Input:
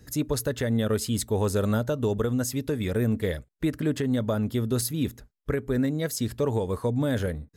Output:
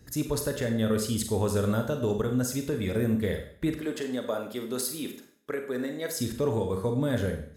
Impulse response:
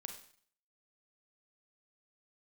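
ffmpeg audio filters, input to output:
-filter_complex "[0:a]asettb=1/sr,asplit=3[a][b][c];[a]atrim=end=3.794[d];[b]atrim=start=3.79:end=6.15,asetpts=PTS-STARTPTS,afade=t=in:d=0.004:c=qsin,afade=t=out:st=2.356:d=0.004:c=qsin,highpass=350[e];[c]atrim=start=6.146[f];[d][e]acrossfade=d=0.004:c1=hsin:c2=qsin[g];[g][f]acrossfade=d=0.004:c1=qsin:c2=hsin[h];[1:a]atrim=start_sample=2205[i];[h][i]afir=irnorm=-1:irlink=0,volume=2.5dB"

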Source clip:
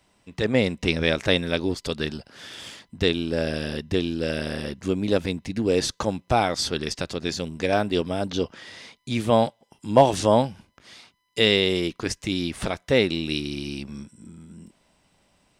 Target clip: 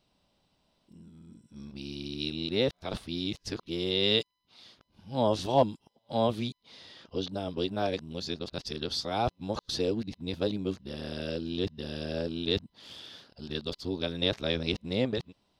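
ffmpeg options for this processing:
-af "areverse,equalizer=f=2k:t=o:w=1:g=-8,equalizer=f=4k:t=o:w=1:g=8,equalizer=f=8k:t=o:w=1:g=-11,volume=-7.5dB"

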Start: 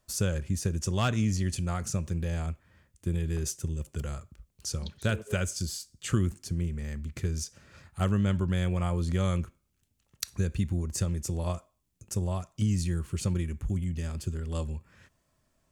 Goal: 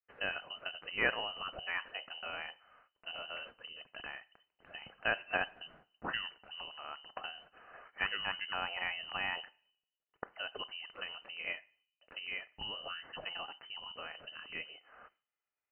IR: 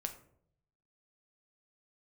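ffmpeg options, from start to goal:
-filter_complex "[0:a]agate=range=-33dB:threshold=-59dB:ratio=3:detection=peak,aderivative,asplit=2[a][b];[1:a]atrim=start_sample=2205[c];[b][c]afir=irnorm=-1:irlink=0,volume=-14.5dB[d];[a][d]amix=inputs=2:normalize=0,lowpass=f=2.6k:t=q:w=0.5098,lowpass=f=2.6k:t=q:w=0.6013,lowpass=f=2.6k:t=q:w=0.9,lowpass=f=2.6k:t=q:w=2.563,afreqshift=-3100,volume=15dB"

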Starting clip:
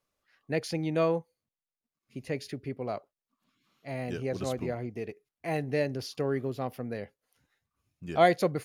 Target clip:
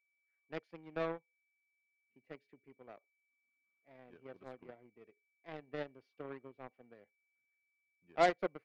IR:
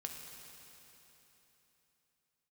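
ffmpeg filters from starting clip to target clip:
-filter_complex "[0:a]acrossover=split=210 2800:gain=0.2 1 0.0708[a][b][c];[a][b][c]amix=inputs=3:normalize=0,aeval=exprs='val(0)+0.00178*sin(2*PI*2300*n/s)':c=same,aeval=exprs='0.299*(cos(1*acos(clip(val(0)/0.299,-1,1)))-cos(1*PI/2))+0.0376*(cos(7*acos(clip(val(0)/0.299,-1,1)))-cos(7*PI/2))':c=same,volume=-7dB"

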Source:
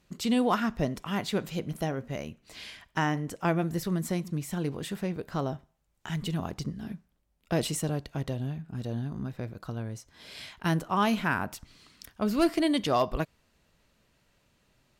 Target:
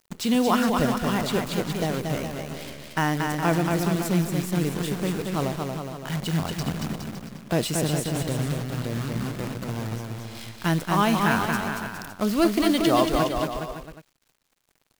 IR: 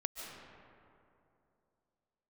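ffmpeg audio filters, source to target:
-af "acrusher=bits=7:dc=4:mix=0:aa=0.000001,aecho=1:1:230|414|561.2|679|773.2:0.631|0.398|0.251|0.158|0.1,volume=3.5dB"

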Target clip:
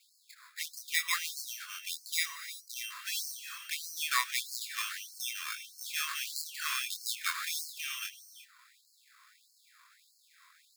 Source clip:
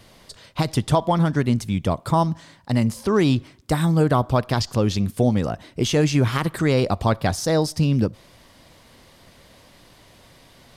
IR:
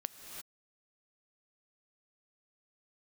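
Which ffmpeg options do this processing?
-filter_complex "[0:a]acrusher=samples=15:mix=1:aa=0.000001,asplit=2[a][b];[1:a]atrim=start_sample=2205,adelay=25[c];[b][c]afir=irnorm=-1:irlink=0,volume=-2dB[d];[a][d]amix=inputs=2:normalize=0,afftfilt=real='re*gte(b*sr/1024,960*pow(4200/960,0.5+0.5*sin(2*PI*1.6*pts/sr)))':imag='im*gte(b*sr/1024,960*pow(4200/960,0.5+0.5*sin(2*PI*1.6*pts/sr)))':win_size=1024:overlap=0.75,volume=-5.5dB"

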